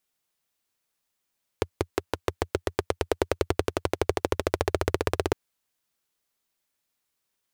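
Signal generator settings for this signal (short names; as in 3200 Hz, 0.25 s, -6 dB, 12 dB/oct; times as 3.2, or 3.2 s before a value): single-cylinder engine model, changing speed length 3.71 s, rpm 600, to 2000, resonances 87/400 Hz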